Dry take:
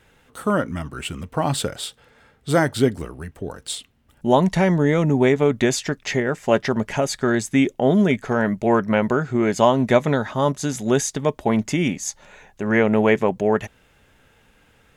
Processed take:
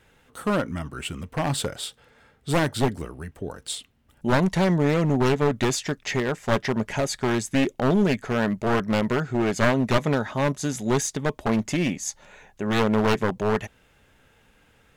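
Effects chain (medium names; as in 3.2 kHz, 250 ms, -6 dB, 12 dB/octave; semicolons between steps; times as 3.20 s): one-sided wavefolder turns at -16.5 dBFS; trim -2.5 dB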